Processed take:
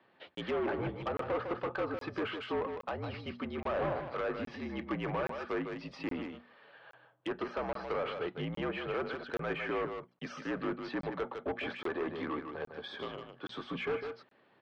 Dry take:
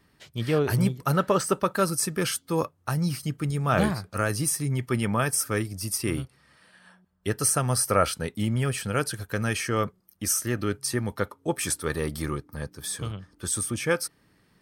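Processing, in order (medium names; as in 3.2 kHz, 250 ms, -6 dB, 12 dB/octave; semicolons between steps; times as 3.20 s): treble shelf 2.6 kHz +10 dB; hum notches 60/120/180/240/300 Hz; mistuned SSB -59 Hz 210–3600 Hz; peaking EQ 600 Hz +14 dB 1.9 oct; peak limiter -8 dBFS, peak gain reduction 9.5 dB; saturation -21 dBFS, distortion -7 dB; delay 154 ms -7 dB; low-pass that closes with the level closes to 2.2 kHz, closed at -22.5 dBFS; crackling interface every 0.82 s, samples 1024, zero, from 0.35 s; trim -9 dB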